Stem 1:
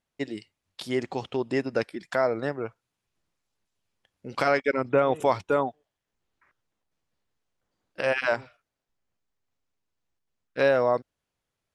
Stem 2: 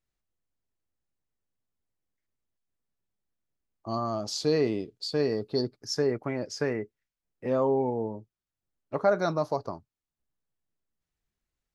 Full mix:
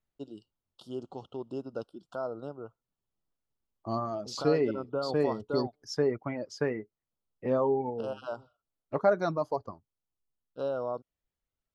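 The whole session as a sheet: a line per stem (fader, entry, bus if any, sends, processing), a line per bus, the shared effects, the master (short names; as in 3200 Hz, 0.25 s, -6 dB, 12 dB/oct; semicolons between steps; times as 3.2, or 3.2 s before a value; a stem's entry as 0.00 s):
-10.0 dB, 0.00 s, no send, elliptic band-stop 1400–2900 Hz, stop band 40 dB
0.0 dB, 0.00 s, no send, reverb removal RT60 1.9 s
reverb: off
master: high shelf 3500 Hz -9.5 dB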